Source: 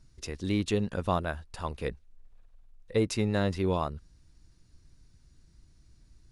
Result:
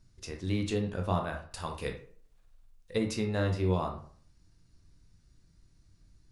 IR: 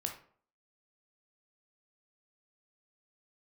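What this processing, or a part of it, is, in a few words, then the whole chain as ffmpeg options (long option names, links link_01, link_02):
bathroom: -filter_complex "[1:a]atrim=start_sample=2205[link_01];[0:a][link_01]afir=irnorm=-1:irlink=0,asettb=1/sr,asplit=3[link_02][link_03][link_04];[link_02]atrim=end=1.514[link_05];[link_03]atrim=start=1.51:end=2.98,asetpts=PTS-STARTPTS,afade=type=in:duration=0.004:curve=qsin,afade=type=out:start_time=1.466:duration=0.004:curve=qsin,highshelf=frequency=3400:gain=10.5[link_06];[link_04]atrim=start=2.976[link_07];[link_05][link_06]acrossfade=duration=0.004:curve1=hsin:curve2=qsin[link_08];[link_08][link_07]acrossfade=duration=0.004:curve1=qsin:curve2=hsin,volume=-3dB"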